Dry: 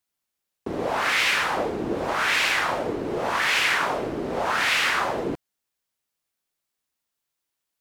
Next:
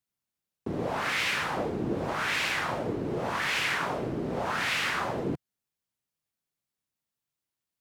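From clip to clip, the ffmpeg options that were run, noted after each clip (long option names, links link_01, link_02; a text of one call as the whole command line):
ffmpeg -i in.wav -af "equalizer=frequency=130:width_type=o:width=2:gain=10.5,volume=-7dB" out.wav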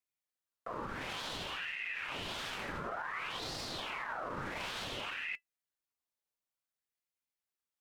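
ffmpeg -i in.wav -af "alimiter=level_in=2dB:limit=-24dB:level=0:latency=1:release=31,volume=-2dB,flanger=delay=3.1:depth=1.6:regen=80:speed=0.73:shape=sinusoidal,aeval=exprs='val(0)*sin(2*PI*1500*n/s+1500*0.55/0.56*sin(2*PI*0.56*n/s))':channel_layout=same,volume=1dB" out.wav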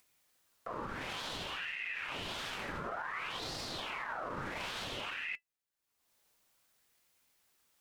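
ffmpeg -i in.wav -af "acompressor=mode=upward:threshold=-56dB:ratio=2.5" out.wav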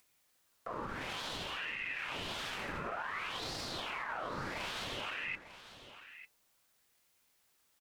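ffmpeg -i in.wav -af "aecho=1:1:898:0.211" out.wav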